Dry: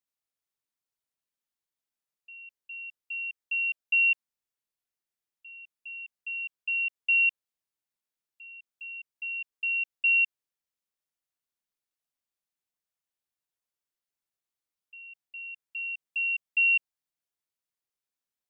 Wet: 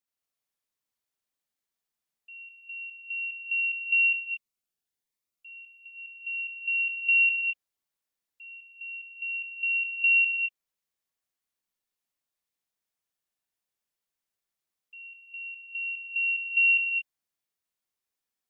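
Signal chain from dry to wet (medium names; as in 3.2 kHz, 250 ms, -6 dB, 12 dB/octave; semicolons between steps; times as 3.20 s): gated-style reverb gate 250 ms rising, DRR 0.5 dB; 3.61–6.05 s: Shepard-style phaser rising 1.2 Hz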